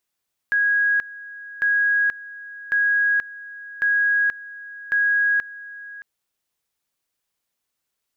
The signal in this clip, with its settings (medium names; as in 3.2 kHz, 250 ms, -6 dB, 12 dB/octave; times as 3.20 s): two-level tone 1.65 kHz -16 dBFS, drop 18.5 dB, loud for 0.48 s, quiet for 0.62 s, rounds 5